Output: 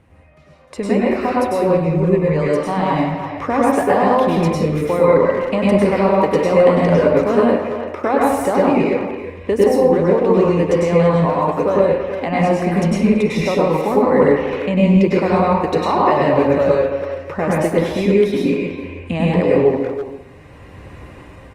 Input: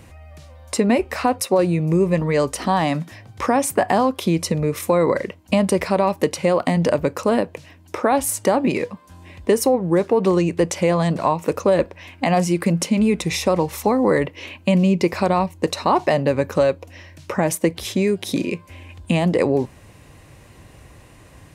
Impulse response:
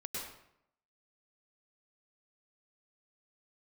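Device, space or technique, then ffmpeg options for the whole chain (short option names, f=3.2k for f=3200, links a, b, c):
speakerphone in a meeting room: -filter_complex "[0:a]bass=f=250:g=-2,treble=f=4k:g=-13[a];[1:a]atrim=start_sample=2205[b];[a][b]afir=irnorm=-1:irlink=0,asplit=2[c][d];[d]adelay=330,highpass=300,lowpass=3.4k,asoftclip=type=hard:threshold=-12dB,volume=-9dB[e];[c][e]amix=inputs=2:normalize=0,dynaudnorm=f=260:g=7:m=11.5dB,volume=-1dB" -ar 48000 -c:a libopus -b:a 32k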